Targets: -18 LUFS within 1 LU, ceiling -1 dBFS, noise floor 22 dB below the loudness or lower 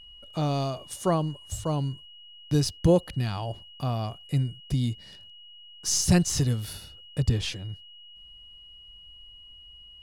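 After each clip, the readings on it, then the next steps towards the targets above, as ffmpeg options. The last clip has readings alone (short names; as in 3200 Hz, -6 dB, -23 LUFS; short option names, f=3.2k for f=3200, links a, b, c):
steady tone 2900 Hz; tone level -47 dBFS; loudness -27.5 LUFS; peak -9.5 dBFS; loudness target -18.0 LUFS
-> -af "bandreject=f=2.9k:w=30"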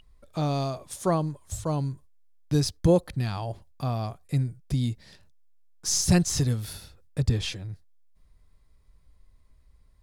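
steady tone none; loudness -27.5 LUFS; peak -9.5 dBFS; loudness target -18.0 LUFS
-> -af "volume=9.5dB,alimiter=limit=-1dB:level=0:latency=1"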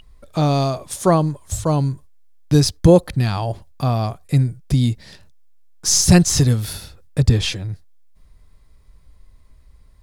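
loudness -18.5 LUFS; peak -1.0 dBFS; noise floor -50 dBFS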